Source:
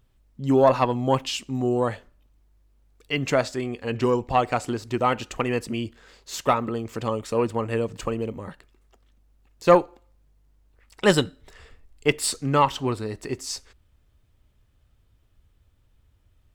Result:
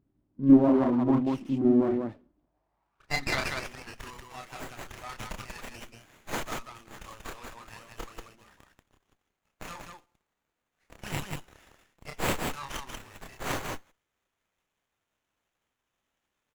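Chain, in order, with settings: bin magnitudes rounded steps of 15 dB; bell 470 Hz -12.5 dB 0.55 oct; in parallel at -1.5 dB: level quantiser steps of 12 dB; on the sum: limiter -12 dBFS, peak gain reduction 10.5 dB; band-pass sweep 310 Hz -> 6600 Hz, 2.11–3.99; loudspeakers at several distances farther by 10 m -3 dB, 64 m -3 dB; running maximum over 9 samples; gain +4.5 dB

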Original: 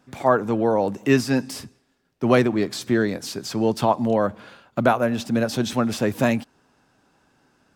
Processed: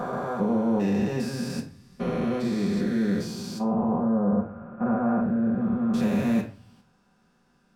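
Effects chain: stepped spectrum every 0.4 s; 3.58–5.94 LPF 1500 Hz 24 dB/oct; reverb RT60 0.40 s, pre-delay 4 ms, DRR -1.5 dB; gain -7 dB

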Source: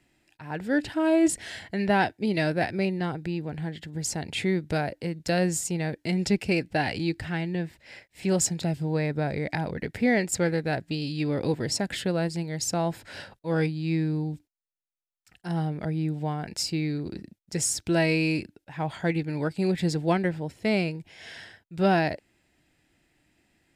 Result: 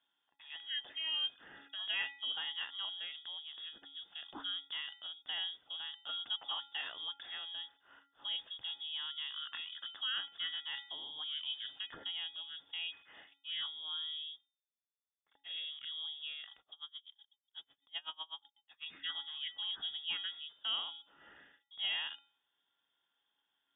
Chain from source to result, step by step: inverted band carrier 3500 Hz; low shelf 110 Hz -11 dB; resonator 280 Hz, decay 0.51 s, harmonics odd, mix 80%; 16.59–18.86 dB-linear tremolo 8 Hz, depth 32 dB; gain -2 dB

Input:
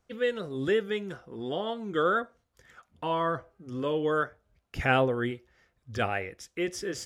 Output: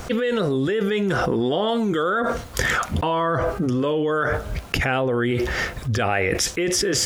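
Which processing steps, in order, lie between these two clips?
1.68–2.1 high shelf 6000 Hz +9.5 dB; fast leveller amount 100%

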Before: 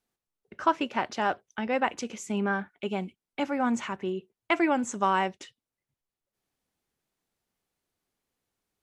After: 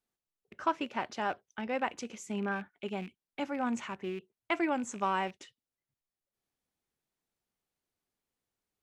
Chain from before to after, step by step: rattling part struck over -45 dBFS, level -33 dBFS; gain -6 dB

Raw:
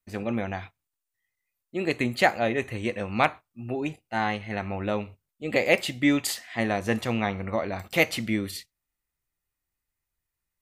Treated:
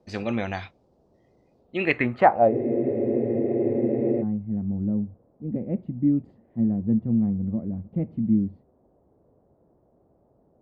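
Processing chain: low-pass sweep 5000 Hz -> 210 Hz, 1.56–2.95; band noise 43–630 Hz -64 dBFS; spectral freeze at 2.53, 1.68 s; gain +1.5 dB

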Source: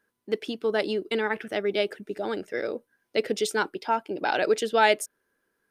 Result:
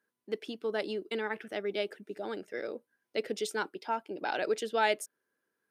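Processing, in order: HPF 130 Hz 12 dB/oct; gain -7.5 dB

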